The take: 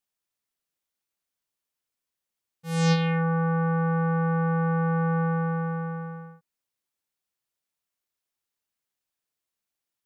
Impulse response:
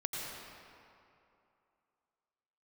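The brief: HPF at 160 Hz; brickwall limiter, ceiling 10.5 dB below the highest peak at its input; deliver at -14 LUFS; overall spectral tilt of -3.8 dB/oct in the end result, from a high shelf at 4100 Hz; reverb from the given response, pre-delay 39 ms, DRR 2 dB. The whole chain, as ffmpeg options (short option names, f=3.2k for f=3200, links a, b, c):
-filter_complex "[0:a]highpass=160,highshelf=f=4.1k:g=7.5,alimiter=limit=-18dB:level=0:latency=1,asplit=2[a][b];[1:a]atrim=start_sample=2205,adelay=39[c];[b][c]afir=irnorm=-1:irlink=0,volume=-5dB[d];[a][d]amix=inputs=2:normalize=0,volume=15.5dB"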